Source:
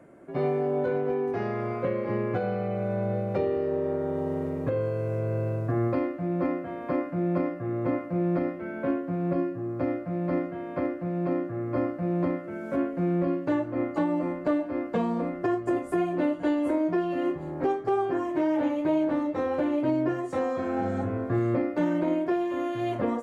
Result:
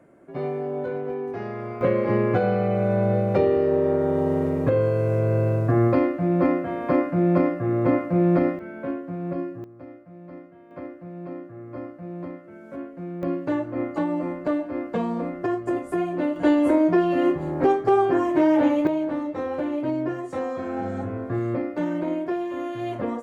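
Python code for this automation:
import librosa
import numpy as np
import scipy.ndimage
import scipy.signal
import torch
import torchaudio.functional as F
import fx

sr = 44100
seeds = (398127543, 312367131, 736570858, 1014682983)

y = fx.gain(x, sr, db=fx.steps((0.0, -2.0), (1.81, 7.0), (8.59, -2.0), (9.64, -14.0), (10.71, -8.0), (13.23, 1.0), (16.36, 7.0), (18.87, -0.5)))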